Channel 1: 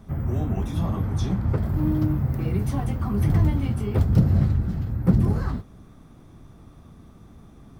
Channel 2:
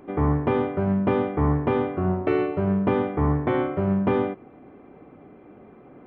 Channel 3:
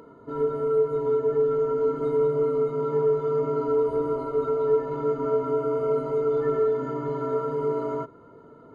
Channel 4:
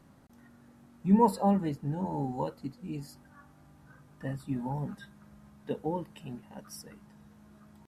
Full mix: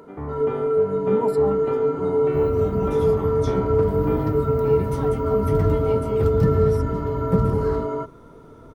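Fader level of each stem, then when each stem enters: -2.0 dB, -10.0 dB, +2.5 dB, -4.5 dB; 2.25 s, 0.00 s, 0.00 s, 0.00 s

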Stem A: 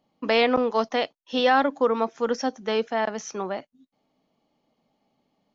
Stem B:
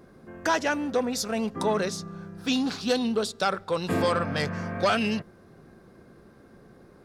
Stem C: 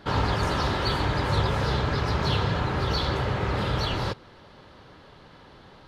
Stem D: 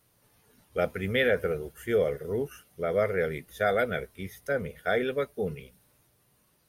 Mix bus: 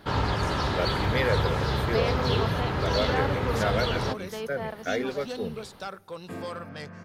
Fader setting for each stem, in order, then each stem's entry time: -11.0 dB, -11.5 dB, -1.5 dB, -2.5 dB; 1.65 s, 2.40 s, 0.00 s, 0.00 s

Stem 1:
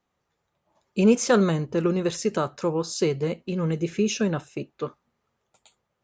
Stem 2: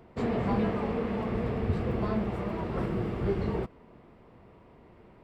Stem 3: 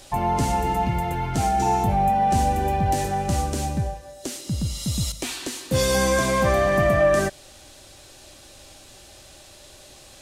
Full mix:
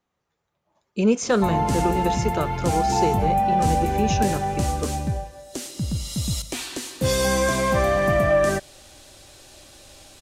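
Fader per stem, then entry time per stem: -1.0 dB, -12.0 dB, -0.5 dB; 0.00 s, 1.05 s, 1.30 s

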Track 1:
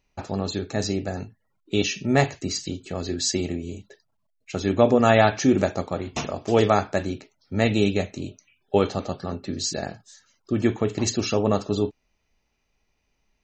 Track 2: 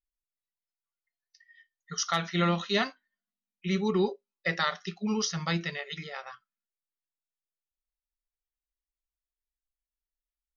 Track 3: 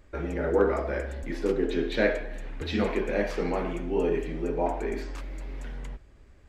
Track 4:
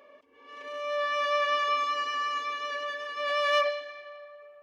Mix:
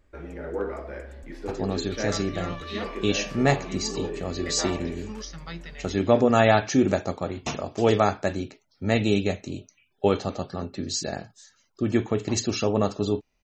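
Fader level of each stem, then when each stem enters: -1.5 dB, -9.0 dB, -7.0 dB, -15.5 dB; 1.30 s, 0.00 s, 0.00 s, 1.15 s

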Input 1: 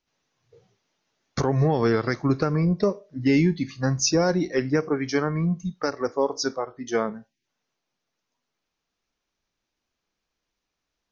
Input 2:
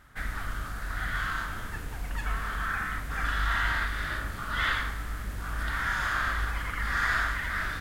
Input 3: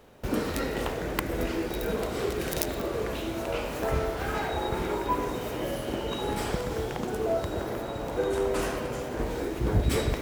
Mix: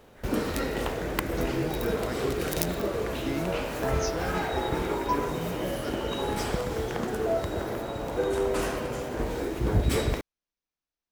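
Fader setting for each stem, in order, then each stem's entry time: -13.5 dB, -20.0 dB, +0.5 dB; 0.00 s, 0.00 s, 0.00 s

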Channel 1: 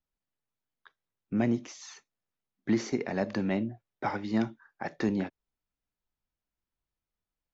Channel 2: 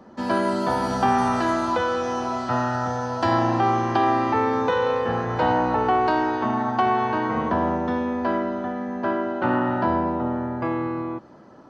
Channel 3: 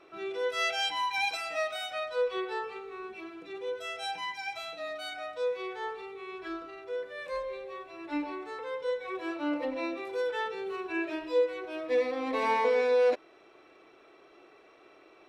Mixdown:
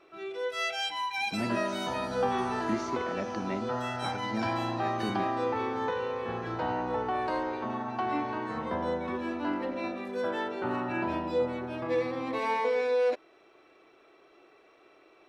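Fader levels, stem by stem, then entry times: -6.0 dB, -11.0 dB, -2.0 dB; 0.00 s, 1.20 s, 0.00 s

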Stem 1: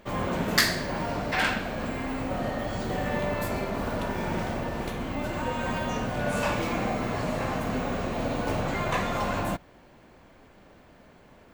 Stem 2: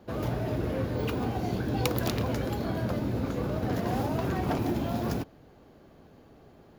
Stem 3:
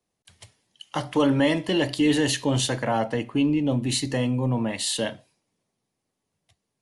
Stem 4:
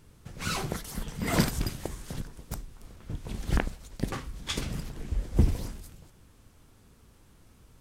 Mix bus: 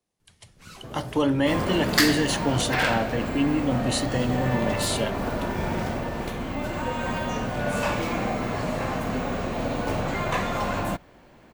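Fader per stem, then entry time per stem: +1.5 dB, -8.0 dB, -2.0 dB, -14.0 dB; 1.40 s, 0.75 s, 0.00 s, 0.20 s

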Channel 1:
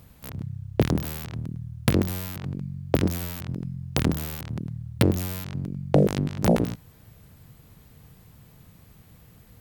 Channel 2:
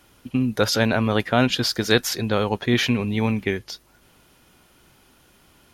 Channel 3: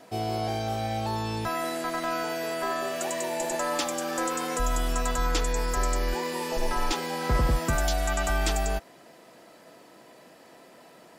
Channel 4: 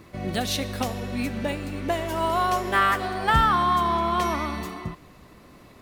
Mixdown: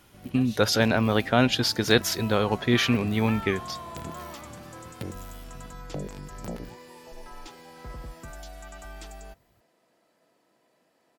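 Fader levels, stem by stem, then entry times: -16.5 dB, -2.0 dB, -16.5 dB, -18.0 dB; 0.00 s, 0.00 s, 0.55 s, 0.00 s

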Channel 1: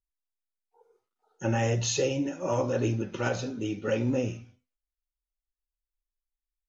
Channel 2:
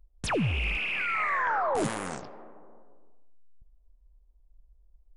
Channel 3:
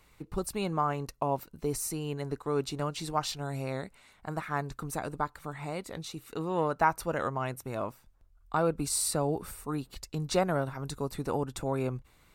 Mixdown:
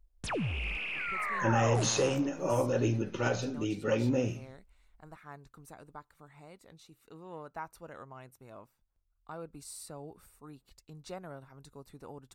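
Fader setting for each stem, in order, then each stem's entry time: -1.5 dB, -6.0 dB, -16.0 dB; 0.00 s, 0.00 s, 0.75 s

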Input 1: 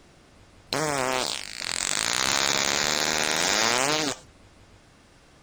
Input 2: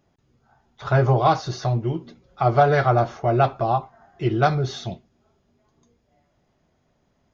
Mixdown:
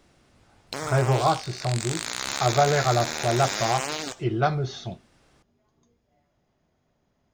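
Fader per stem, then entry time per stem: -6.5 dB, -4.0 dB; 0.00 s, 0.00 s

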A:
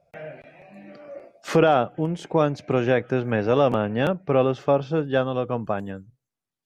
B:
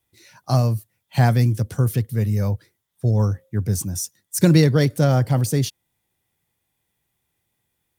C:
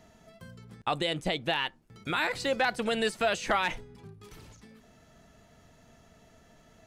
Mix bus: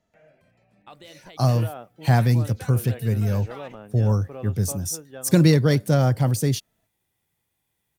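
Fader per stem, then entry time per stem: -18.5 dB, -1.5 dB, -16.5 dB; 0.00 s, 0.90 s, 0.00 s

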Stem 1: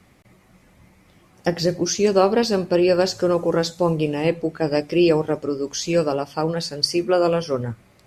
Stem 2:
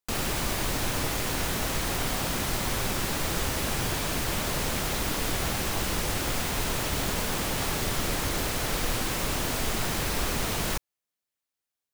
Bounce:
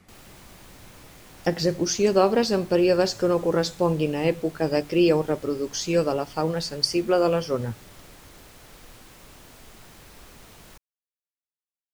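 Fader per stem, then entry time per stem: -2.5 dB, -19.5 dB; 0.00 s, 0.00 s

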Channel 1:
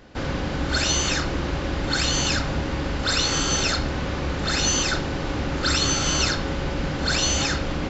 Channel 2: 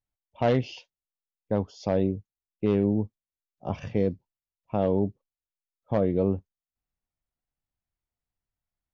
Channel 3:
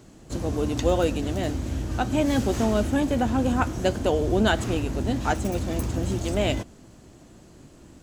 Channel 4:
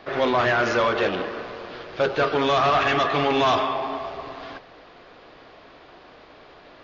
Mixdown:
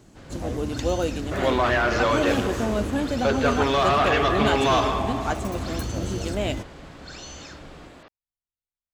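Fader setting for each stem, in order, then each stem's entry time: -18.5 dB, -13.0 dB, -2.5 dB, -1.0 dB; 0.00 s, 0.00 s, 0.00 s, 1.25 s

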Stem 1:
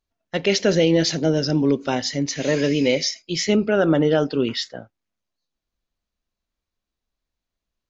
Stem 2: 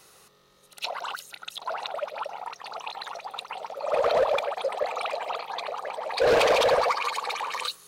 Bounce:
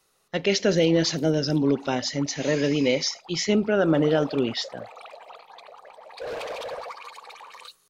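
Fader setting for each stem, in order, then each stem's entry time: -3.0 dB, -13.0 dB; 0.00 s, 0.00 s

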